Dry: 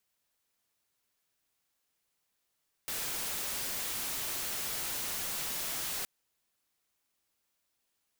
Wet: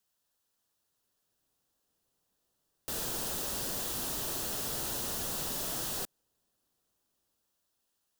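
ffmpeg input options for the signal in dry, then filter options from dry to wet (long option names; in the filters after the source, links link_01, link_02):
-f lavfi -i "anoisesrc=color=white:amplitude=0.0274:duration=3.17:sample_rate=44100:seed=1"
-filter_complex "[0:a]equalizer=frequency=2200:width=4.2:gain=-11.5,acrossover=split=680|1600[link_01][link_02][link_03];[link_01]dynaudnorm=framelen=220:gausssize=11:maxgain=8dB[link_04];[link_04][link_02][link_03]amix=inputs=3:normalize=0"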